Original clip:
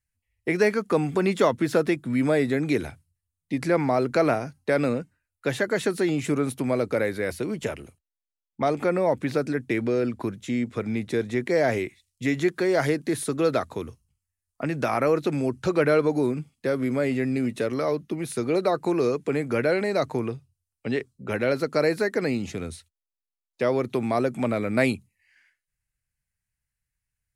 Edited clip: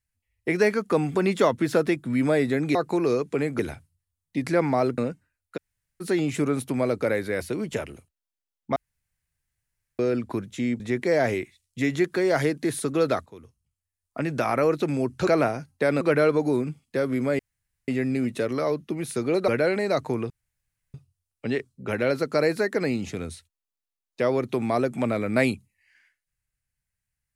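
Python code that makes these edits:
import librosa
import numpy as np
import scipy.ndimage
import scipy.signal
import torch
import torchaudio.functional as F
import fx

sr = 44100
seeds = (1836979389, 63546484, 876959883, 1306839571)

y = fx.edit(x, sr, fx.move(start_s=4.14, length_s=0.74, to_s=15.71),
    fx.room_tone_fill(start_s=5.47, length_s=0.44, crossfade_s=0.02),
    fx.room_tone_fill(start_s=8.66, length_s=1.23),
    fx.cut(start_s=10.7, length_s=0.54),
    fx.fade_in_from(start_s=13.7, length_s=0.92, floor_db=-17.5),
    fx.insert_room_tone(at_s=17.09, length_s=0.49),
    fx.move(start_s=18.69, length_s=0.84, to_s=2.75),
    fx.insert_room_tone(at_s=20.35, length_s=0.64), tone=tone)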